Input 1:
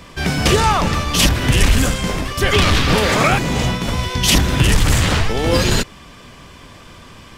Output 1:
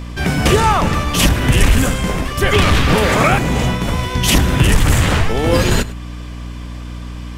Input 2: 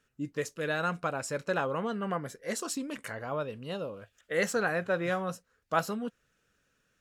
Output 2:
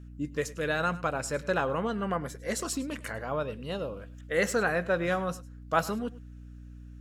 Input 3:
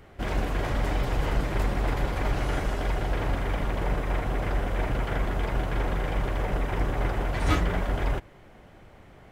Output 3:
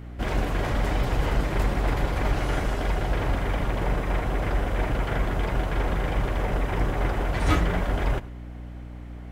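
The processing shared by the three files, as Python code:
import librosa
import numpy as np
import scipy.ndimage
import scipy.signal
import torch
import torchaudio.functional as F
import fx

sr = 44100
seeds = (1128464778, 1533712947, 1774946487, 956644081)

y = fx.add_hum(x, sr, base_hz=60, snr_db=14)
y = fx.dynamic_eq(y, sr, hz=4700.0, q=1.1, threshold_db=-36.0, ratio=4.0, max_db=-6)
y = y + 10.0 ** (-19.0 / 20.0) * np.pad(y, (int(103 * sr / 1000.0), 0))[:len(y)]
y = y * librosa.db_to_amplitude(2.0)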